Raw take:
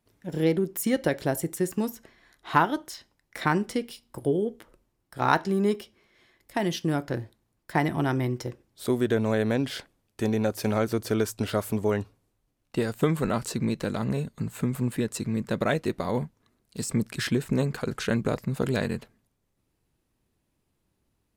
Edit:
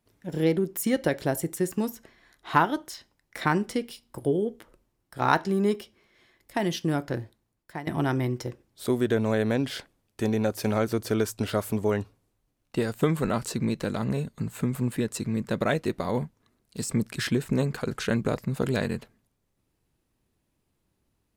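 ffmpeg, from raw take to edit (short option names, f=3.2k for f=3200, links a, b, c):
-filter_complex "[0:a]asplit=2[a][b];[a]atrim=end=7.87,asetpts=PTS-STARTPTS,afade=t=out:st=7:d=0.87:c=qsin:silence=0.11885[c];[b]atrim=start=7.87,asetpts=PTS-STARTPTS,afade=t=in:d=0.004:c=hsin:silence=0.11885[d];[c][d]concat=n=2:v=0:a=1"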